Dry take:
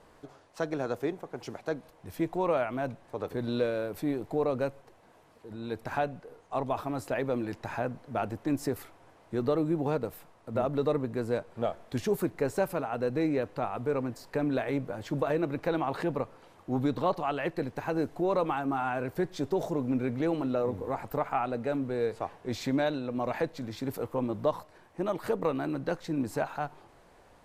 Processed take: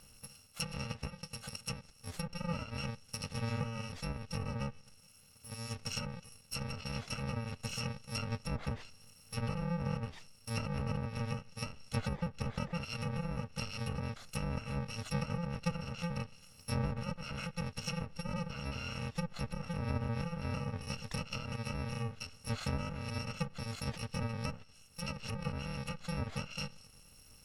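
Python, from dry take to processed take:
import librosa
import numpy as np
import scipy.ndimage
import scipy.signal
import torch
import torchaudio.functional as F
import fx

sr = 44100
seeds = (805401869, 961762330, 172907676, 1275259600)

y = fx.bit_reversed(x, sr, seeds[0], block=128)
y = fx.env_lowpass_down(y, sr, base_hz=1400.0, full_db=-25.0)
y = fx.high_shelf(y, sr, hz=12000.0, db=-10.5)
y = y * 10.0 ** (3.0 / 20.0)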